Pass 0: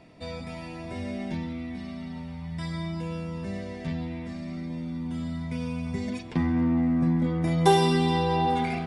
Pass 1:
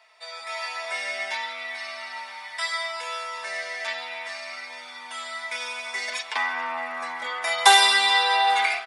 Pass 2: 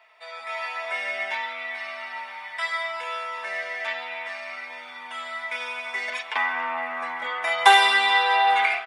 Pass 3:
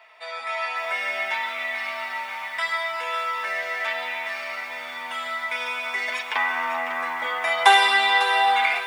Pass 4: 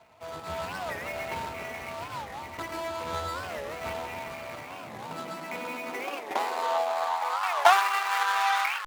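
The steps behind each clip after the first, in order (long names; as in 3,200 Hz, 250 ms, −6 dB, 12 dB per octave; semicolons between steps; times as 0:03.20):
high-pass filter 880 Hz 24 dB per octave; comb filter 4.6 ms, depth 52%; automatic gain control gain up to 11.5 dB; level +2.5 dB
flat-topped bell 6,600 Hz −11.5 dB; level +1.5 dB
in parallel at 0 dB: downward compressor 12 to 1, threshold −33 dBFS, peak gain reduction 23.5 dB; on the sum: convolution reverb RT60 0.45 s, pre-delay 85 ms, DRR 15 dB; feedback echo at a low word length 550 ms, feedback 35%, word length 7 bits, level −10.5 dB; level −1 dB
running median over 25 samples; high-pass filter sweep 77 Hz → 1,300 Hz, 0:04.33–0:07.81; wow of a warped record 45 rpm, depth 250 cents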